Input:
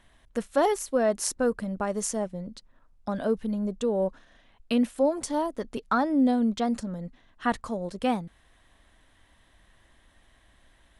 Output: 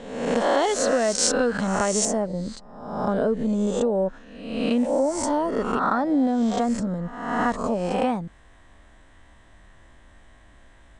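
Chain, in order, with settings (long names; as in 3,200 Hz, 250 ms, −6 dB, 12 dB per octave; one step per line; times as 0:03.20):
peak hold with a rise ahead of every peak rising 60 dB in 0.91 s
Chebyshev low-pass filter 8,200 Hz, order 4
downward compressor 5 to 1, threshold −26 dBFS, peak gain reduction 9 dB
parametric band 3,700 Hz +6 dB 1.5 octaves, from 0:02.05 −8.5 dB
level +7.5 dB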